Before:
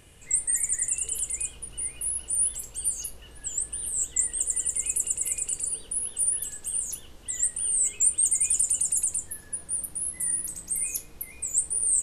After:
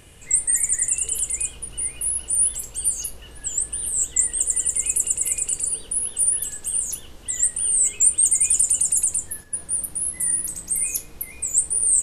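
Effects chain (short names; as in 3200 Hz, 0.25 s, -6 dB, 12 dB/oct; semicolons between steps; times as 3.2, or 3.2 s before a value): 7.35–9.68 gate -42 dBFS, range -7 dB; gain +5.5 dB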